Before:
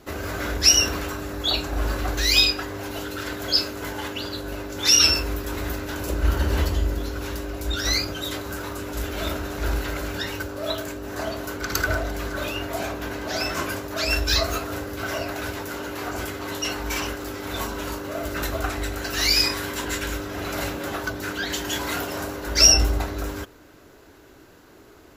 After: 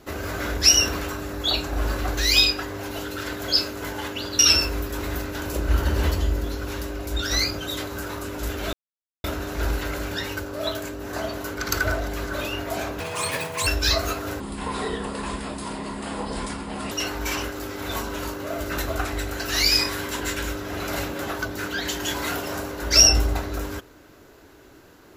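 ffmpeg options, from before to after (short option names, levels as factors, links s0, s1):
-filter_complex "[0:a]asplit=7[s0][s1][s2][s3][s4][s5][s6];[s0]atrim=end=4.392[s7];[s1]atrim=start=4.928:end=9.27,asetpts=PTS-STARTPTS,afade=t=out:st=4.338:d=0.004:c=hsin,apad=pad_dur=0.51[s8];[s2]atrim=start=9.27:end=13.034,asetpts=PTS-STARTPTS,afade=t=in:d=0.004:c=hsin[s9];[s3]atrim=start=13.03:end=14.12,asetpts=PTS-STARTPTS,asetrate=71883,aresample=44100,atrim=end_sample=29490,asetpts=PTS-STARTPTS[s10];[s4]atrim=start=14.116:end=14.854[s11];[s5]atrim=start=14.85:end=16.56,asetpts=PTS-STARTPTS,asetrate=29988,aresample=44100[s12];[s6]atrim=start=16.556[s13];[s8][s9]concat=n=2:v=0:a=1[s14];[s7][s14]acrossfade=d=0.004:c1=hsin:c2=hsin[s15];[s15][s10]acrossfade=d=0.004:c1=hsin:c2=hsin[s16];[s16][s11]acrossfade=d=0.004:c1=hsin:c2=hsin[s17];[s17][s12]acrossfade=d=0.004:c1=hsin:c2=hsin[s18];[s18][s13]acrossfade=d=0.004:c1=hsin:c2=hsin"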